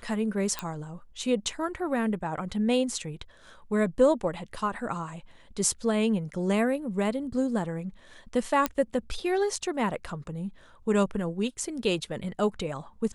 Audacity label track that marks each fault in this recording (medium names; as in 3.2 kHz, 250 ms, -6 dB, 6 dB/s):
0.590000	0.590000	pop -14 dBFS
8.660000	8.660000	pop -10 dBFS